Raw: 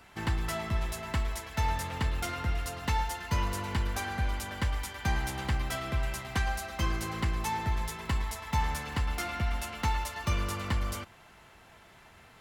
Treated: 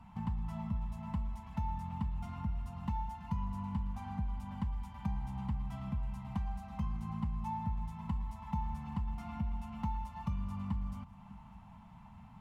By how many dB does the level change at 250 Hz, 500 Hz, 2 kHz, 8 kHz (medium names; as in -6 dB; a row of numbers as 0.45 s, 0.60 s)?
-1.0 dB, -18.5 dB, -23.0 dB, under -25 dB